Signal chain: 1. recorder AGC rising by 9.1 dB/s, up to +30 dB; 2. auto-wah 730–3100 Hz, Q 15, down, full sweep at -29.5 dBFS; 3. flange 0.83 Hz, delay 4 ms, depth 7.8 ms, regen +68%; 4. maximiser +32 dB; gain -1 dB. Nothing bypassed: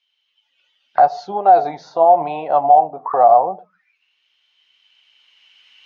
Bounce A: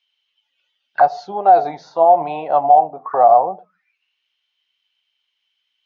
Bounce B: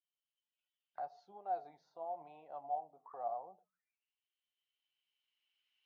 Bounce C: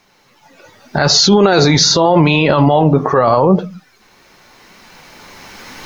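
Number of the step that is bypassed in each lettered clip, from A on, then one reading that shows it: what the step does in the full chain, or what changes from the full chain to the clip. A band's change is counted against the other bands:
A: 1, momentary loudness spread change -2 LU; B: 4, crest factor change +4.0 dB; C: 2, crest factor change -3.5 dB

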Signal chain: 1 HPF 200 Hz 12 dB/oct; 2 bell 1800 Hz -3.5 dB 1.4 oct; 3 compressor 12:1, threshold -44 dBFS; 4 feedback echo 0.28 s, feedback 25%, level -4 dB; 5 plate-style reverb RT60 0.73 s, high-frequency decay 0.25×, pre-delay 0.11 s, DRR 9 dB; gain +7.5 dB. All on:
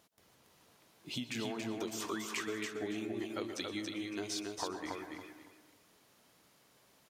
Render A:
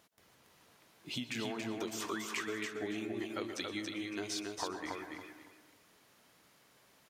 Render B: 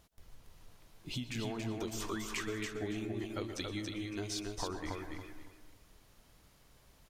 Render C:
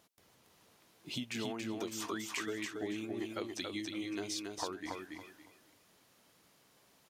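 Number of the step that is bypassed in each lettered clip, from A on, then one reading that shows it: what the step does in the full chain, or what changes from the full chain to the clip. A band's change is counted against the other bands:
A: 2, 2 kHz band +2.0 dB; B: 1, 125 Hz band +9.0 dB; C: 5, echo-to-direct -2.0 dB to -3.5 dB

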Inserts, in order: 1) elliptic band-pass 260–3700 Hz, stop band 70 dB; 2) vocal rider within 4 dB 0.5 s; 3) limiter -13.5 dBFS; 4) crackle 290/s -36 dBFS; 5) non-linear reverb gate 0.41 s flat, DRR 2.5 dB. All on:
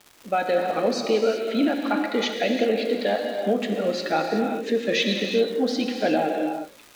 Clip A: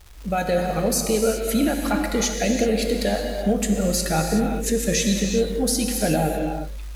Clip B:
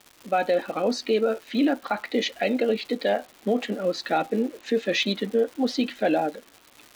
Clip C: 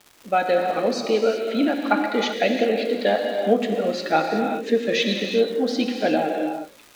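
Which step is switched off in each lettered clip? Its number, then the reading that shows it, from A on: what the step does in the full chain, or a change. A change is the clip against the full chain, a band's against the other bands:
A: 1, 8 kHz band +17.0 dB; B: 5, loudness change -1.5 LU; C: 3, crest factor change +2.5 dB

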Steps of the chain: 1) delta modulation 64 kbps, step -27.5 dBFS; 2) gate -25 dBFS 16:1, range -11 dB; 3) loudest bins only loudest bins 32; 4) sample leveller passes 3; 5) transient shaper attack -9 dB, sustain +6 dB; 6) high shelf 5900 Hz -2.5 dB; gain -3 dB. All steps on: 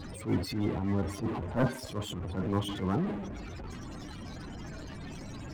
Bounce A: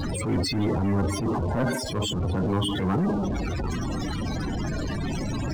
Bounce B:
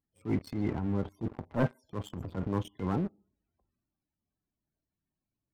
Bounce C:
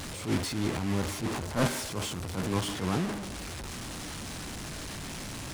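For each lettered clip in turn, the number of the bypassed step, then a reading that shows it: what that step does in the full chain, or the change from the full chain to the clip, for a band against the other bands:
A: 2, momentary loudness spread change -7 LU; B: 1, 4 kHz band -10.0 dB; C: 3, 8 kHz band +10.5 dB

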